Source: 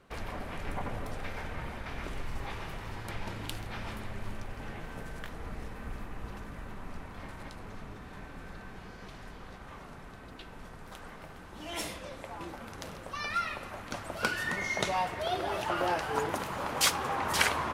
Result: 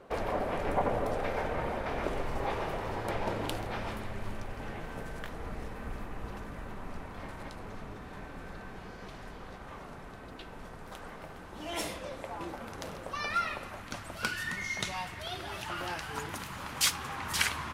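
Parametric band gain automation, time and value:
parametric band 550 Hz 2 octaves
0:03.49 +12.5 dB
0:04.05 +3.5 dB
0:13.46 +3.5 dB
0:13.79 −3 dB
0:14.61 −12 dB

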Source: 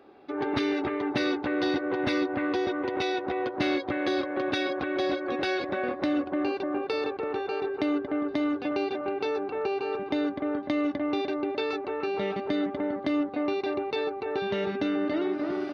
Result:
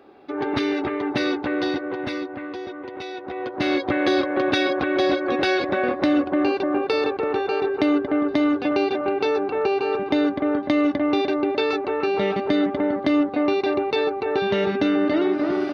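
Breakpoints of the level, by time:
0:01.53 +4 dB
0:02.50 −5 dB
0:03.11 −5 dB
0:03.87 +7.5 dB

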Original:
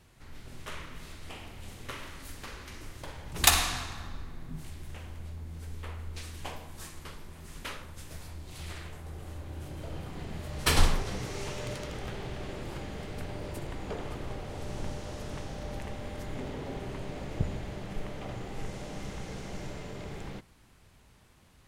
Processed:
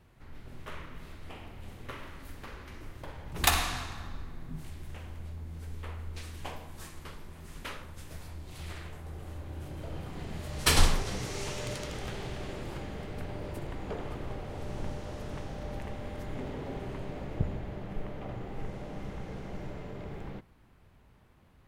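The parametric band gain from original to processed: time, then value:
parametric band 7,400 Hz 2.3 octaves
0:03.08 −11 dB
0:03.80 −4 dB
0:09.92 −4 dB
0:10.62 +3.5 dB
0:12.23 +3.5 dB
0:13.07 −6.5 dB
0:16.92 −6.5 dB
0:17.62 −14 dB

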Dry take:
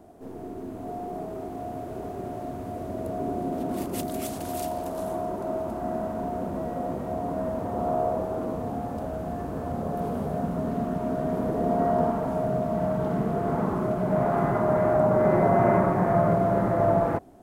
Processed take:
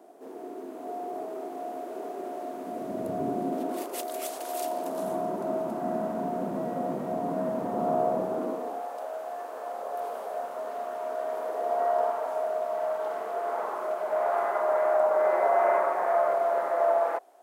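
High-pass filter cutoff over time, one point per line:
high-pass filter 24 dB per octave
0:02.50 310 Hz
0:03.20 110 Hz
0:03.91 410 Hz
0:04.52 410 Hz
0:05.13 160 Hz
0:08.29 160 Hz
0:08.89 530 Hz

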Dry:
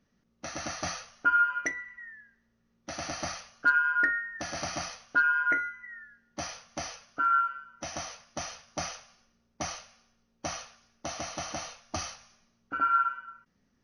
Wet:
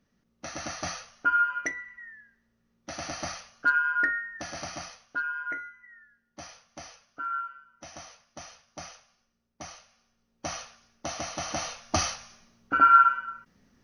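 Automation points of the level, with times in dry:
0:04.23 0 dB
0:05.30 −7.5 dB
0:09.73 −7.5 dB
0:10.62 +2 dB
0:11.38 +2 dB
0:11.84 +8.5 dB

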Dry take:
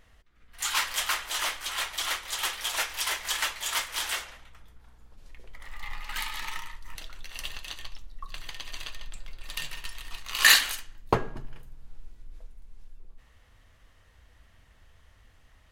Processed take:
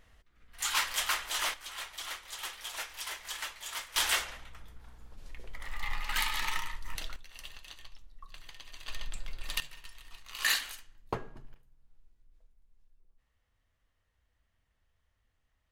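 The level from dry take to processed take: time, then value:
−2.5 dB
from 0:01.54 −10 dB
from 0:03.96 +2.5 dB
from 0:07.16 −10 dB
from 0:08.88 +1.5 dB
from 0:09.60 −11 dB
from 0:11.54 −18.5 dB

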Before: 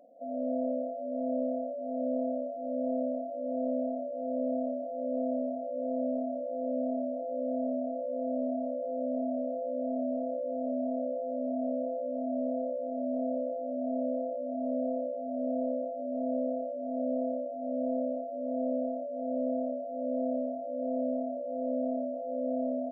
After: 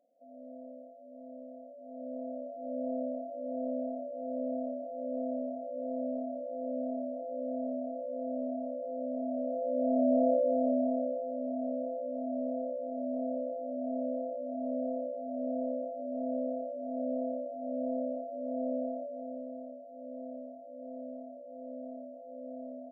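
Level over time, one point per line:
0:01.47 −16 dB
0:02.68 −3.5 dB
0:09.18 −3.5 dB
0:10.29 +8 dB
0:11.33 −2.5 dB
0:19.05 −2.5 dB
0:19.47 −11.5 dB

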